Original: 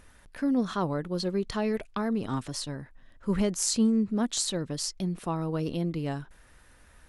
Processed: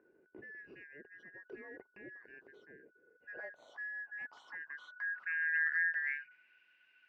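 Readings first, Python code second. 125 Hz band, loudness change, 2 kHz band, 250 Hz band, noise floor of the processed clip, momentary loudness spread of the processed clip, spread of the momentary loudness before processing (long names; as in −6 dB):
below −40 dB, −7.0 dB, +10.5 dB, −34.5 dB, −71 dBFS, 22 LU, 10 LU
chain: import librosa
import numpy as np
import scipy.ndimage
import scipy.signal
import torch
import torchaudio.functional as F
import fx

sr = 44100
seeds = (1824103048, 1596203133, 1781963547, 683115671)

p1 = fx.band_shuffle(x, sr, order='2143')
p2 = fx.high_shelf(p1, sr, hz=2700.0, db=-11.5)
p3 = 10.0 ** (-28.5 / 20.0) * np.tanh(p2 / 10.0 ** (-28.5 / 20.0))
p4 = p2 + F.gain(torch.from_numpy(p3), -6.0).numpy()
p5 = fx.filter_sweep_bandpass(p4, sr, from_hz=400.0, to_hz=2800.0, start_s=2.72, end_s=6.69, q=4.1)
y = scipy.ndimage.gaussian_filter1d(p5, 1.5, mode='constant')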